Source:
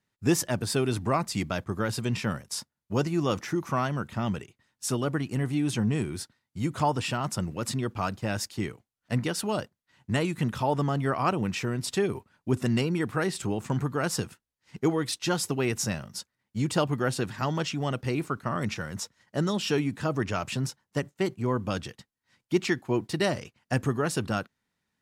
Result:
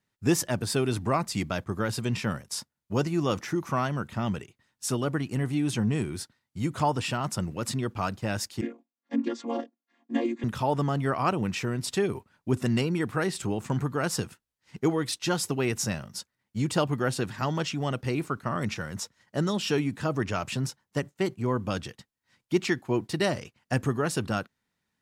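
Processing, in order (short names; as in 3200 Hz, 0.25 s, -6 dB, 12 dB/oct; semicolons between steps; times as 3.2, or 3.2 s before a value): 8.61–10.44 chord vocoder minor triad, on A#3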